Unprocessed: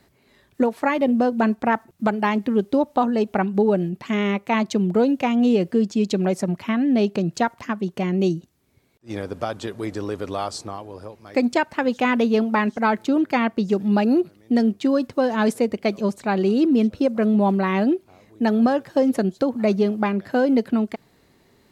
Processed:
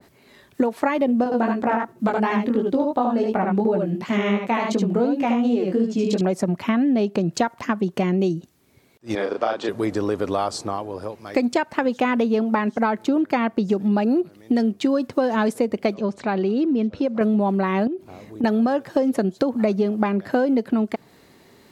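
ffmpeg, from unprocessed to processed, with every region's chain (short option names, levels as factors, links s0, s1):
-filter_complex "[0:a]asettb=1/sr,asplit=3[s0][s1][s2];[s0]atrim=end=1.244[s3];[s1]atrim=start=1.24:end=6.21,asetpts=PTS-STARTPTS,afade=t=in:d=0.004:c=qsin,afade=t=out:st=4.966:d=0.004:c=qsin,aecho=1:1:75:0.668,atrim=end_sample=219177,flanger=delay=16.5:depth=4.9:speed=2.8[s4];[s2]atrim=start=6.206[s5];[s3][s4]acrossfade=d=0.004:c1=hsin:c2=qsin[s6];[s6][s5]acrossfade=d=0.004:c1=qsin:c2=hsin,asettb=1/sr,asplit=3[s7][s8][s9];[s7]atrim=end=9.154[s10];[s8]atrim=start=9.15:end=9.69,asetpts=PTS-STARTPTS,afade=t=in:d=0.004:c=qsin,afade=t=out:st=0.536:d=0.004:c=qsin,highpass=340,lowpass=4600,asplit=2[s11][s12];[s12]adelay=35,volume=0.708[s13];[s11][s13]amix=inputs=2:normalize=0,atrim=end_sample=23814[s14];[s9]atrim=start=9.686[s15];[s10][s14]acrossfade=d=0.004:c1=hsin:c2=qsin[s16];[s16][s15]acrossfade=d=0.004:c1=qsin:c2=hsin,asettb=1/sr,asplit=3[s17][s18][s19];[s17]atrim=end=15.944[s20];[s18]atrim=start=15.94:end=17.21,asetpts=PTS-STARTPTS,afade=t=in:d=0.004:c=qsin,afade=t=out:st=1.266:d=0.004:c=qsin,lowpass=4900,acompressor=threshold=0.02:ratio=1.5:attack=3.2:release=140:knee=1:detection=peak[s21];[s19]atrim=start=17.206[s22];[s20][s21]acrossfade=d=0.004:c1=hsin:c2=qsin[s23];[s23][s22]acrossfade=d=0.004:c1=qsin:c2=hsin,asettb=1/sr,asplit=3[s24][s25][s26];[s24]atrim=end=17.874[s27];[s25]atrim=start=17.87:end=18.44,asetpts=PTS-STARTPTS,afade=t=in:d=0.004:c=qsin,afade=t=out:st=0.566:d=0.004:c=qsin,lowshelf=f=450:g=8,acompressor=threshold=0.0447:ratio=12:attack=3.2:release=140:knee=1:detection=peak[s28];[s26]atrim=start=18.436[s29];[s27][s28]acrossfade=d=0.004:c1=hsin:c2=qsin[s30];[s30][s29]acrossfade=d=0.004:c1=qsin:c2=hsin,lowshelf=f=79:g=-11.5,acompressor=threshold=0.0631:ratio=6,adynamicequalizer=threshold=0.00631:dfrequency=1600:dqfactor=0.7:tfrequency=1600:tqfactor=0.7:attack=5:release=100:ratio=0.375:range=2.5:mode=cutabove:tftype=highshelf,volume=2.24"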